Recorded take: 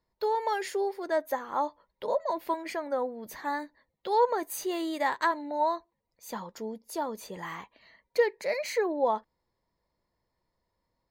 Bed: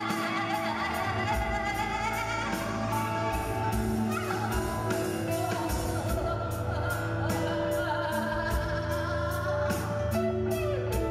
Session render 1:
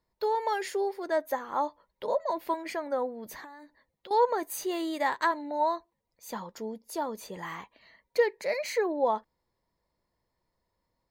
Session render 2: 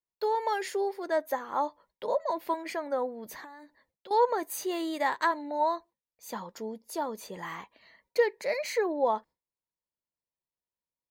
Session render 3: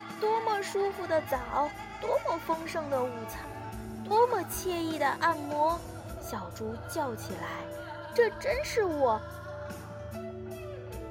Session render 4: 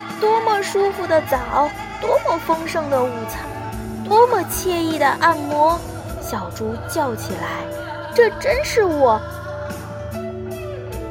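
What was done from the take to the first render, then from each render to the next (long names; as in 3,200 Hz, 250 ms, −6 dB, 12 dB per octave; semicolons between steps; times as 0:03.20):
0:03.44–0:04.11: downward compressor 8 to 1, threshold −44 dBFS
noise gate with hold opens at −58 dBFS; low-shelf EQ 81 Hz −8 dB
mix in bed −11.5 dB
level +12 dB; brickwall limiter −2 dBFS, peak gain reduction 1 dB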